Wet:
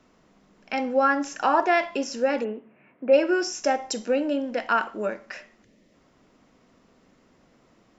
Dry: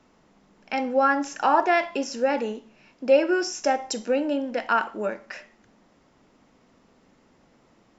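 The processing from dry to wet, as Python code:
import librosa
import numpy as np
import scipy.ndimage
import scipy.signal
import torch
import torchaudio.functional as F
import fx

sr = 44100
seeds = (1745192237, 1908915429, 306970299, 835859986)

y = fx.ellip_bandpass(x, sr, low_hz=100.0, high_hz=2200.0, order=3, stop_db=40, at=(2.43, 3.12), fade=0.02)
y = fx.notch(y, sr, hz=860.0, q=12.0)
y = fx.spec_box(y, sr, start_s=5.64, length_s=0.3, low_hz=660.0, high_hz=1700.0, gain_db=-11)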